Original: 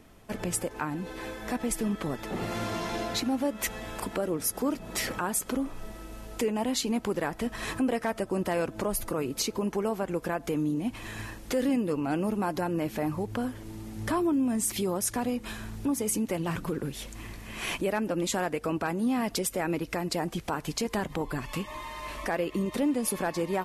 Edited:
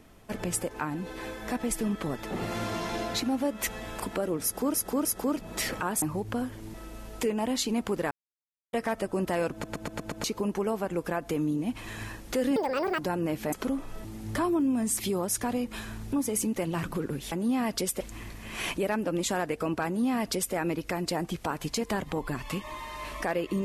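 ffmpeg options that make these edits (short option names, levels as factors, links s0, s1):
-filter_complex "[0:a]asplit=19[s0][s1][s2][s3][s4][s5][s6][s7][s8][s9][s10][s11][s12][s13][s14][s15][s16][s17][s18];[s0]atrim=end=4.742[s19];[s1]atrim=start=4.428:end=4.742[s20];[s2]atrim=start=4.428:end=5.402[s21];[s3]atrim=start=13.048:end=13.772[s22];[s4]atrim=start=5.918:end=7.29,asetpts=PTS-STARTPTS,afade=t=out:st=1.368:d=0.004:c=hsin[s23];[s5]atrim=start=7.29:end=7.91,asetpts=PTS-STARTPTS,volume=0[s24];[s6]atrim=start=7.91:end=8.822,asetpts=PTS-STARTPTS,afade=t=in:d=0.004:c=hsin[s25];[s7]atrim=start=8.698:end=8.822[s26];[s8]atrim=start=8.698:end=8.822[s27];[s9]atrim=start=8.698:end=8.822[s28];[s10]atrim=start=8.698:end=8.822[s29];[s11]atrim=start=8.698:end=8.822[s30];[s12]atrim=start=9.418:end=11.744[s31];[s13]atrim=start=11.74:end=12.51,asetpts=PTS-STARTPTS,asetrate=79821,aresample=44100[s32];[s14]atrim=start=12.506:end=13.052[s33];[s15]atrim=start=5.398:end=5.922[s34];[s16]atrim=start=13.768:end=17.042[s35];[s17]atrim=start=18.888:end=19.582[s36];[s18]atrim=start=17.038[s37];[s19][s20]acrossfade=d=0.004:c1=hsin:c2=hsin[s38];[s38][s21]acrossfade=d=0.004:c1=hsin:c2=hsin[s39];[s39][s22]acrossfade=d=0.004:c1=hsin:c2=hsin[s40];[s23][s24][s25]concat=n=3:v=0:a=1[s41];[s40][s41]acrossfade=d=0.004:c1=hsin:c2=hsin[s42];[s42][s26]acrossfade=d=0.004:c1=hsin:c2=hsin[s43];[s43][s27]acrossfade=d=0.004:c1=hsin:c2=hsin[s44];[s44][s28]acrossfade=d=0.004:c1=hsin:c2=hsin[s45];[s45][s29]acrossfade=d=0.004:c1=hsin:c2=hsin[s46];[s46][s30]acrossfade=d=0.004:c1=hsin:c2=hsin[s47];[s47][s31]acrossfade=d=0.004:c1=hsin:c2=hsin[s48];[s48][s32]acrossfade=d=0.004:c1=hsin:c2=hsin[s49];[s49][s33]acrossfade=d=0.004:c1=hsin:c2=hsin[s50];[s50][s34]acrossfade=d=0.004:c1=hsin:c2=hsin[s51];[s51][s35]acrossfade=d=0.004:c1=hsin:c2=hsin[s52];[s52][s36]acrossfade=d=0.004:c1=hsin:c2=hsin[s53];[s53][s37]acrossfade=d=0.004:c1=hsin:c2=hsin"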